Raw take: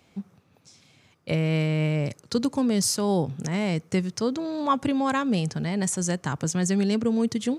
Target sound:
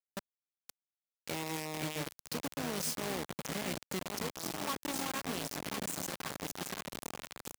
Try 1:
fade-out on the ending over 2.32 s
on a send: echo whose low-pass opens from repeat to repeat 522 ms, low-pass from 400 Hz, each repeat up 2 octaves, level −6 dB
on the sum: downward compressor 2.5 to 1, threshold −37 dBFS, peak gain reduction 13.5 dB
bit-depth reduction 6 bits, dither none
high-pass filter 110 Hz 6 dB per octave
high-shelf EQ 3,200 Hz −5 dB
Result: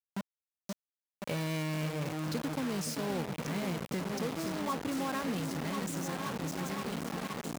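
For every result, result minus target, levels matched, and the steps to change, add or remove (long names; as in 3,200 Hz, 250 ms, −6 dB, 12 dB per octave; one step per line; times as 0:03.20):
8,000 Hz band −5.5 dB; downward compressor: peak gain reduction −5 dB
change: high-shelf EQ 3,200 Hz +4 dB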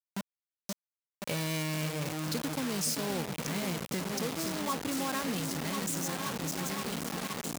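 downward compressor: peak gain reduction −5 dB
change: downward compressor 2.5 to 1, threshold −45.5 dBFS, peak gain reduction 18.5 dB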